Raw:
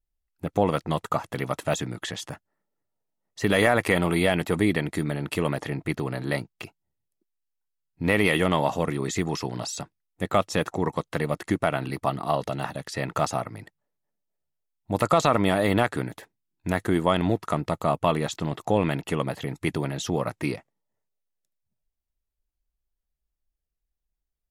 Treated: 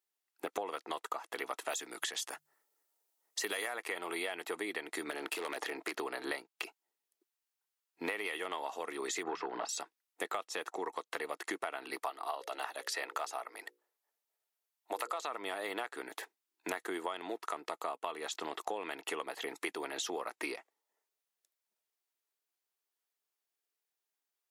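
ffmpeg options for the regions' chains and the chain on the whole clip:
-filter_complex "[0:a]asettb=1/sr,asplit=3[a][b][c];[a]atrim=end=1.694[d];[b]atrim=start=1.69:end=3.76,asetpts=PTS-STARTPTS,afade=t=in:d=0.004:c=qsin,afade=t=out:st=2.066:d=0.004:c=qsin,highshelf=f=4.9k:g=10.5,bandreject=f=50:t=h:w=6,bandreject=f=100:t=h:w=6,bandreject=f=150:t=h:w=6[e];[c]atrim=start=3.756[f];[d][e]acrossfade=d=0.004:c1=hsin:c2=qsin[g];[g][f]acrossfade=d=0.004:c1=qsin:c2=hsin,asettb=1/sr,asplit=3[h][i][j];[h]atrim=end=5.114[k];[i]atrim=start=5.11:end=5.98,asetpts=PTS-STARTPTS,afade=t=in:d=0.004:c=qsin,afade=t=out:st=0.866:d=0.004:c=qsin,highpass=170,acompressor=threshold=-27dB:ratio=3:attack=3.2:release=140:knee=1:detection=peak,aeval=exprs='0.0631*(abs(mod(val(0)/0.0631+3,4)-2)-1)':c=same[l];[j]atrim=start=5.976[m];[k][l]acrossfade=d=0.004:c1=hsin:c2=qsin[n];[n][m]acrossfade=d=0.004:c1=qsin:c2=hsin,asettb=1/sr,asplit=3[o][p][q];[o]atrim=end=9.234[r];[p]atrim=start=9.23:end=9.69,asetpts=PTS-STARTPTS,afade=t=in:d=0.004:c=qsin,afade=t=out:st=0.456:d=0.004:c=qsin,lowpass=1.9k,bandreject=f=78:t=h:w=4,bandreject=f=156:t=h:w=4,bandreject=f=234:t=h:w=4,aeval=exprs='0.178*sin(PI/2*1.41*val(0)/0.178)':c=same[s];[q]atrim=start=9.686[t];[r][s]acrossfade=d=0.004:c1=hsin:c2=qsin[u];[u][t]acrossfade=d=0.004:c1=qsin:c2=hsin,asettb=1/sr,asplit=3[v][w][x];[v]atrim=end=12.024[y];[w]atrim=start=12.02:end=15.21,asetpts=PTS-STARTPTS,afade=t=in:d=0.004:c=qsin,afade=t=out:st=3.186:d=0.004:c=qsin,highpass=370,equalizer=f=12k:w=3.7:g=5,bandreject=f=60:t=h:w=6,bandreject=f=120:t=h:w=6,bandreject=f=180:t=h:w=6,bandreject=f=240:t=h:w=6,bandreject=f=300:t=h:w=6,bandreject=f=360:t=h:w=6,bandreject=f=420:t=h:w=6,bandreject=f=480:t=h:w=6,bandreject=f=540:t=h:w=6[z];[x]atrim=start=15.206[aa];[y][z]acrossfade=d=0.004:c1=hsin:c2=qsin[ab];[ab][aa]acrossfade=d=0.004:c1=qsin:c2=hsin,highpass=f=400:w=0.5412,highpass=f=400:w=1.3066,equalizer=f=570:t=o:w=0.4:g=-8,acompressor=threshold=-39dB:ratio=12,volume=4.5dB"

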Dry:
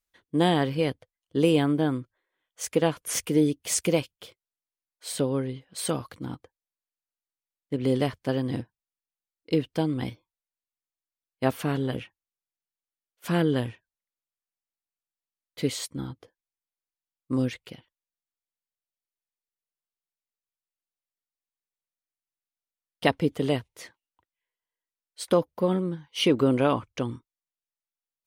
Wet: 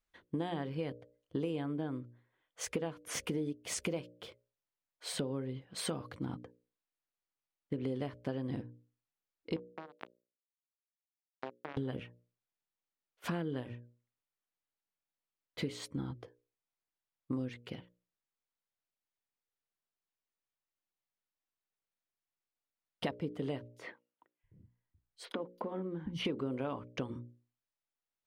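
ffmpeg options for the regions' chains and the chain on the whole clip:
-filter_complex "[0:a]asettb=1/sr,asplit=3[a][b][c];[a]atrim=end=9.564[d];[b]atrim=start=9.56:end=11.77,asetpts=PTS-STARTPTS,afade=t=in:d=0.004:c=qsin,afade=t=out:st=2.206:d=0.004:c=qsin,acrusher=bits=2:mix=0:aa=0.5,acompressor=threshold=-39dB:ratio=6:attack=3.2:release=140:knee=1:detection=peak,highpass=240,lowpass=4.6k[e];[c]atrim=start=11.766[f];[d][e]acrossfade=d=0.004:c1=hsin:c2=qsin[g];[g][f]acrossfade=d=0.004:c1=qsin:c2=hsin,asettb=1/sr,asplit=3[h][i][j];[h]atrim=end=23.684[k];[i]atrim=start=23.68:end=26.25,asetpts=PTS-STARTPTS,afade=t=in:d=0.004:c=qsin,afade=t=out:st=2.566:d=0.004:c=qsin,bass=f=250:g=9,treble=f=4k:g=-10,acompressor=threshold=-28dB:ratio=6:attack=3.2:release=140:knee=1:detection=peak,acrossover=split=220|4200[l][m][n];[m]adelay=30[o];[l]adelay=750[p];[p][o][n]amix=inputs=3:normalize=0,atrim=end_sample=113337[q];[j]atrim=start=26.246[r];[k][q]acrossfade=d=0.004:c1=hsin:c2=qsin[s];[s][r]acrossfade=d=0.004:c1=qsin:c2=hsin,lowpass=f=2.4k:p=1,bandreject=f=60:t=h:w=6,bandreject=f=120:t=h:w=6,bandreject=f=180:t=h:w=6,bandreject=f=240:t=h:w=6,bandreject=f=300:t=h:w=6,bandreject=f=360:t=h:w=6,bandreject=f=420:t=h:w=6,bandreject=f=480:t=h:w=6,bandreject=f=540:t=h:w=6,bandreject=f=600:t=h:w=6,acompressor=threshold=-37dB:ratio=6,volume=2.5dB"

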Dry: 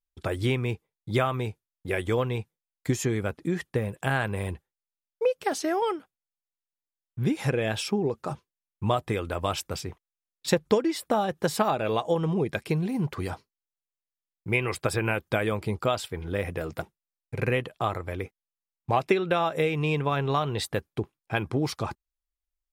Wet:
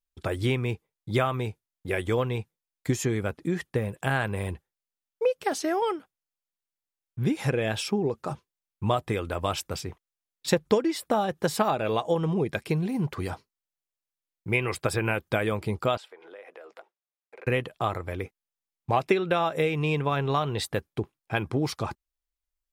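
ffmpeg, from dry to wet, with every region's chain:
-filter_complex "[0:a]asettb=1/sr,asplit=3[a][b][c];[a]atrim=end=15.974[d];[b]atrim=start=15.97:end=17.47,asetpts=PTS-STARTPTS,afade=t=in:d=0.004:c=qsin,afade=t=out:st=1.496:d=0.004:c=qsin,highpass=f=450:w=0.5412,highpass=f=450:w=1.3066,aemphasis=mode=reproduction:type=75fm,acompressor=threshold=-46dB:ratio=3:attack=3.2:release=140:knee=1:detection=peak[e];[c]atrim=start=17.466[f];[d][e]acrossfade=d=0.004:c1=hsin:c2=qsin[g];[g][f]acrossfade=d=0.004:c1=qsin:c2=hsin"

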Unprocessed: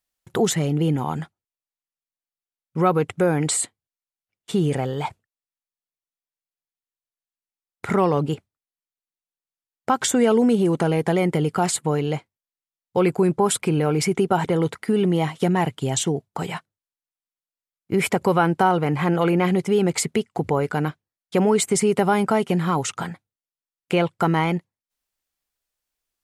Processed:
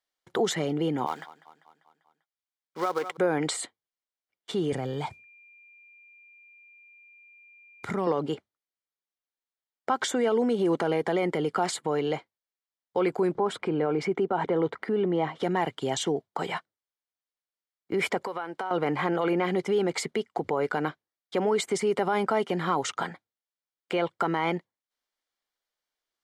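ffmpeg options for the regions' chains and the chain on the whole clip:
-filter_complex "[0:a]asettb=1/sr,asplit=3[a][b][c];[a]atrim=end=1.064[d];[b]atrim=start=1.06:end=3.17,asetpts=PTS-STARTPTS,afade=t=in:d=0.004:c=qsin,afade=t=out:st=2.106:d=0.004:c=qsin,highpass=f=790:p=1,acrusher=bits=3:mode=log:mix=0:aa=0.000001,aecho=1:1:197|394|591|788|985:0.141|0.0819|0.0475|0.0276|0.016,atrim=end_sample=93051[e];[c]atrim=start=3.166[f];[d][e]acrossfade=d=0.004:c1=hsin:c2=qsin[g];[g][f]acrossfade=d=0.004:c1=qsin:c2=hsin,asettb=1/sr,asplit=3[h][i][j];[h]atrim=end=4.724[k];[i]atrim=start=4.72:end=8.07,asetpts=PTS-STARTPTS,afade=t=in:d=0.004:c=qsin,afade=t=out:st=3.346:d=0.004:c=qsin,aeval=exprs='val(0)+0.00282*sin(2*PI*2400*n/s)':c=same,acompressor=threshold=-33dB:ratio=2:attack=3.2:release=140:knee=1:detection=peak,bass=f=250:g=14,treble=f=4k:g=9[l];[j]atrim=start=8.066[m];[k][l]acrossfade=d=0.004:c1=hsin:c2=qsin[n];[n][m]acrossfade=d=0.004:c1=qsin:c2=hsin,asettb=1/sr,asplit=3[o][p][q];[o]atrim=end=13.354[r];[p]atrim=start=13.35:end=15.43,asetpts=PTS-STARTPTS,afade=t=in:d=0.004:c=qsin,afade=t=out:st=2.076:d=0.004:c=qsin,lowpass=f=1.5k:p=1,acompressor=mode=upward:threshold=-28dB:ratio=2.5:attack=3.2:release=140:knee=2.83:detection=peak[s];[q]atrim=start=15.426[t];[r][s]acrossfade=d=0.004:c1=hsin:c2=qsin[u];[u][t]acrossfade=d=0.004:c1=qsin:c2=hsin,asettb=1/sr,asplit=3[v][w][x];[v]atrim=end=18.214[y];[w]atrim=start=18.21:end=18.71,asetpts=PTS-STARTPTS,afade=t=in:d=0.004:c=qsin,afade=t=out:st=0.496:d=0.004:c=qsin,equalizer=f=90:w=0.36:g=-12.5,acompressor=threshold=-28dB:ratio=8:attack=3.2:release=140:knee=1:detection=peak[z];[x]atrim=start=18.706[aa];[y][z]acrossfade=d=0.004:c1=hsin:c2=qsin[ab];[ab][aa]acrossfade=d=0.004:c1=qsin:c2=hsin,alimiter=limit=-15dB:level=0:latency=1:release=69,acrossover=split=260 5600:gain=0.178 1 0.224[ac][ad][ae];[ac][ad][ae]amix=inputs=3:normalize=0,bandreject=f=2.6k:w=8"

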